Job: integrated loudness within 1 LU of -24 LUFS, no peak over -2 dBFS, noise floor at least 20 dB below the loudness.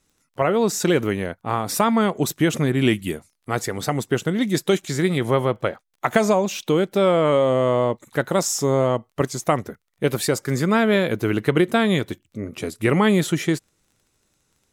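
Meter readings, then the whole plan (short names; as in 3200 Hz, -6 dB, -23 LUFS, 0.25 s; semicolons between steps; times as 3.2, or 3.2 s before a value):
ticks 19/s; loudness -21.5 LUFS; peak -3.5 dBFS; loudness target -24.0 LUFS
-> de-click; gain -2.5 dB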